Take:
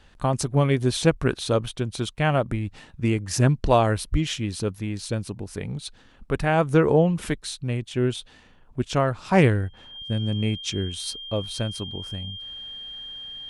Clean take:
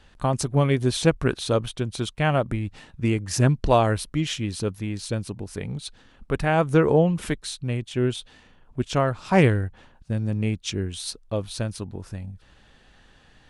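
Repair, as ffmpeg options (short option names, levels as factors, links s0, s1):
-filter_complex "[0:a]bandreject=f=3200:w=30,asplit=3[s0][s1][s2];[s0]afade=t=out:st=4.11:d=0.02[s3];[s1]highpass=f=140:w=0.5412,highpass=f=140:w=1.3066,afade=t=in:st=4.11:d=0.02,afade=t=out:st=4.23:d=0.02[s4];[s2]afade=t=in:st=4.23:d=0.02[s5];[s3][s4][s5]amix=inputs=3:normalize=0"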